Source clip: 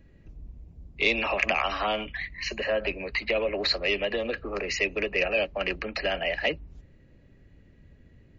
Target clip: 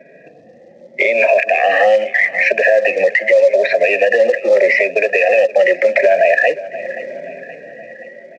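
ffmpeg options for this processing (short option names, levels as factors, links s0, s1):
-filter_complex "[0:a]afftfilt=real='re*pow(10,15/40*sin(2*PI*(1.6*log(max(b,1)*sr/1024/100)/log(2)-(0.82)*(pts-256)/sr)))':imag='im*pow(10,15/40*sin(2*PI*(1.6*log(max(b,1)*sr/1024/100)/log(2)-(0.82)*(pts-256)/sr)))':win_size=1024:overlap=0.75,highshelf=f=2900:t=q:w=1.5:g=-11,dynaudnorm=f=160:g=13:m=5.62,asplit=3[s0][s1][s2];[s0]bandpass=f=530:t=q:w=8,volume=1[s3];[s1]bandpass=f=1840:t=q:w=8,volume=0.501[s4];[s2]bandpass=f=2480:t=q:w=8,volume=0.355[s5];[s3][s4][s5]amix=inputs=3:normalize=0,acompressor=threshold=0.0112:ratio=8,acrusher=bits=6:mode=log:mix=0:aa=0.000001,highpass=f=180:w=0.5412,highpass=f=180:w=1.3066,equalizer=f=300:t=q:w=4:g=-8,equalizer=f=440:t=q:w=4:g=-7,equalizer=f=690:t=q:w=4:g=8,equalizer=f=1400:t=q:w=4:g=-10,equalizer=f=2800:t=q:w=4:g=-7,lowpass=f=6000:w=0.5412,lowpass=f=6000:w=1.3066,aecho=1:1:525|1050|1575|2100:0.1|0.053|0.0281|0.0149,alimiter=level_in=59.6:limit=0.891:release=50:level=0:latency=1,volume=0.75"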